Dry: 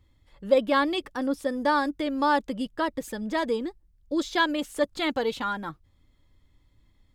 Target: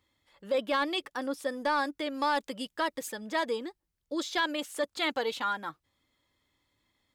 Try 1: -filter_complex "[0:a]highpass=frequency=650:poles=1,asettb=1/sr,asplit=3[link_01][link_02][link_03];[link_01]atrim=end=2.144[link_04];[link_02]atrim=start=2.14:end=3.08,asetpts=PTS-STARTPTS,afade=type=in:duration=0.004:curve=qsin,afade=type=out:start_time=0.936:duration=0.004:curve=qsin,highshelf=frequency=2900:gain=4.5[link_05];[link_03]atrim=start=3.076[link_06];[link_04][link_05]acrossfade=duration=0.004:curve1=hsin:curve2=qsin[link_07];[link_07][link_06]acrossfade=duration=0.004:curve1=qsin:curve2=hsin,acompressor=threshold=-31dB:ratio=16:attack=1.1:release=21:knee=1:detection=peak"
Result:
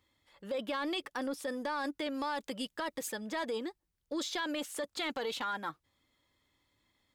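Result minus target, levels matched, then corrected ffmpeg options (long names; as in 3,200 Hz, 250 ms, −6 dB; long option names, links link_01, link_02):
downward compressor: peak gain reduction +8 dB
-filter_complex "[0:a]highpass=frequency=650:poles=1,asettb=1/sr,asplit=3[link_01][link_02][link_03];[link_01]atrim=end=2.144[link_04];[link_02]atrim=start=2.14:end=3.08,asetpts=PTS-STARTPTS,afade=type=in:duration=0.004:curve=qsin,afade=type=out:start_time=0.936:duration=0.004:curve=qsin,highshelf=frequency=2900:gain=4.5[link_05];[link_03]atrim=start=3.076[link_06];[link_04][link_05]acrossfade=duration=0.004:curve1=hsin:curve2=qsin[link_07];[link_07][link_06]acrossfade=duration=0.004:curve1=qsin:curve2=hsin,acompressor=threshold=-22.5dB:ratio=16:attack=1.1:release=21:knee=1:detection=peak"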